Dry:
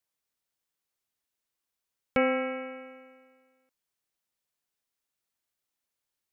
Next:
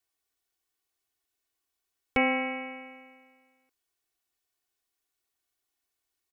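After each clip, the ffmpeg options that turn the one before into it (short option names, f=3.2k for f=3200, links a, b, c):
-af "aecho=1:1:2.7:0.83"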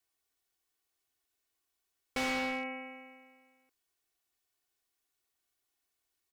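-filter_complex "[0:a]asplit=2[a][b];[b]acrusher=bits=4:mix=0:aa=0.000001,volume=-11dB[c];[a][c]amix=inputs=2:normalize=0,volume=31dB,asoftclip=hard,volume=-31dB"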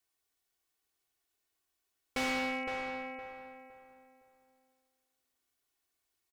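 -filter_complex "[0:a]asplit=2[a][b];[b]adelay=513,lowpass=f=2k:p=1,volume=-5dB,asplit=2[c][d];[d]adelay=513,lowpass=f=2k:p=1,volume=0.32,asplit=2[e][f];[f]adelay=513,lowpass=f=2k:p=1,volume=0.32,asplit=2[g][h];[h]adelay=513,lowpass=f=2k:p=1,volume=0.32[i];[a][c][e][g][i]amix=inputs=5:normalize=0"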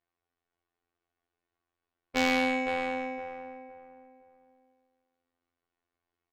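-af "afftfilt=real='hypot(re,im)*cos(PI*b)':imag='0':win_size=2048:overlap=0.75,adynamicsmooth=sensitivity=6:basefreq=1.9k,volume=8.5dB"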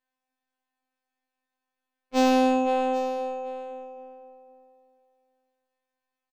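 -af "aecho=1:1:784:0.158,afftfilt=real='re*2.45*eq(mod(b,6),0)':imag='im*2.45*eq(mod(b,6),0)':win_size=2048:overlap=0.75,volume=2dB"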